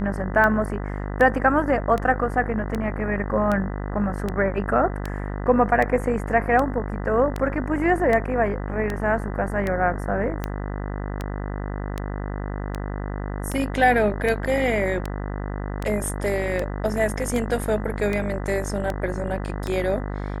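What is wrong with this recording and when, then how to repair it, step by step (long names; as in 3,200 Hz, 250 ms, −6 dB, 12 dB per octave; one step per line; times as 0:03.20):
mains buzz 50 Hz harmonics 40 −29 dBFS
scratch tick 78 rpm −13 dBFS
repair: click removal
hum removal 50 Hz, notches 40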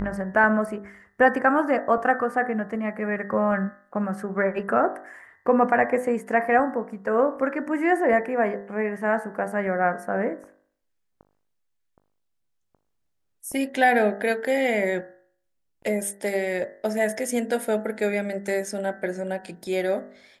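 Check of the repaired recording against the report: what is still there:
none of them is left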